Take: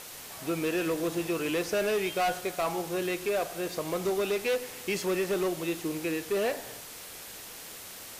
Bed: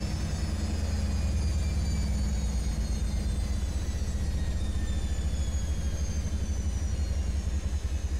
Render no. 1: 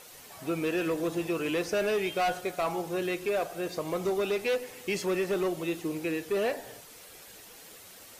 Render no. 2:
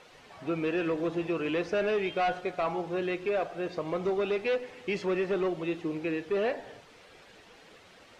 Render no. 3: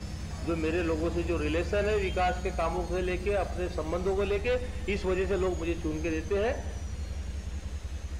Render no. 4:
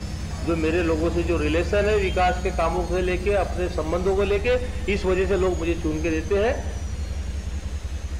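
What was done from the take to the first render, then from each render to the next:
denoiser 8 dB, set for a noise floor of -45 dBFS
LPF 3300 Hz 12 dB/oct; notches 60/120 Hz
add bed -6.5 dB
gain +7 dB

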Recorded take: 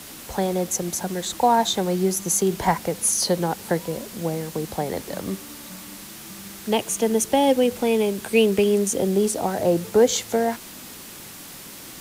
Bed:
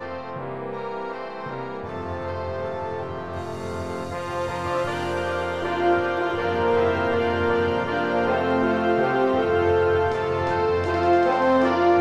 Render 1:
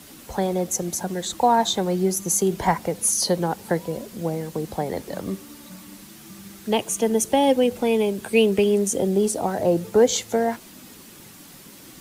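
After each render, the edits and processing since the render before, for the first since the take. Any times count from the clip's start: denoiser 7 dB, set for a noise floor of -40 dBFS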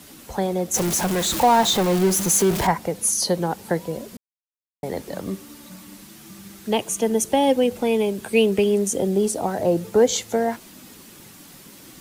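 0.74–2.67 zero-crossing step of -21 dBFS; 4.17–4.83 mute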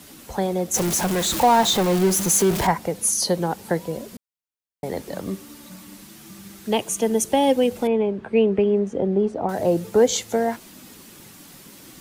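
7.87–9.49 LPF 1700 Hz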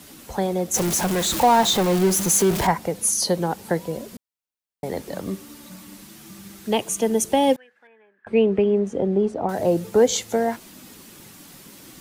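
7.56–8.27 band-pass 1700 Hz, Q 16; 8.84–9.34 high shelf 7000 Hz +6 dB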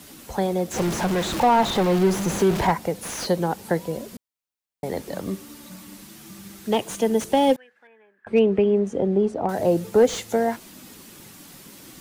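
slew limiter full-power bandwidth 170 Hz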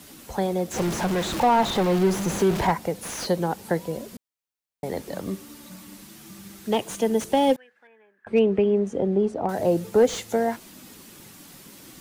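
gain -1.5 dB

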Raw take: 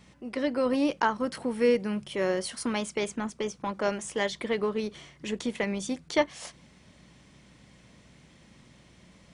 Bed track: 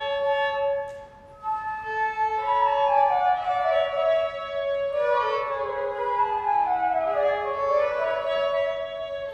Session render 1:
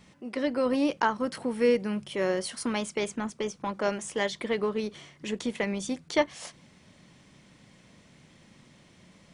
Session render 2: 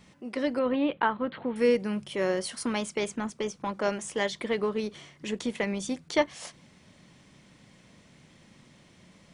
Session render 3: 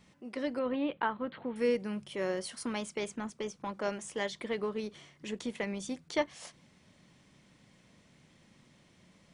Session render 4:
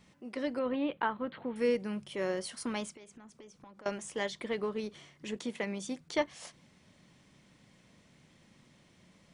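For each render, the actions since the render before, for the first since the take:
de-hum 60 Hz, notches 2
0.59–1.56 elliptic low-pass 3700 Hz
gain -6 dB
2.95–3.86 compressor 16:1, threshold -49 dBFS; 5.36–6.01 HPF 120 Hz

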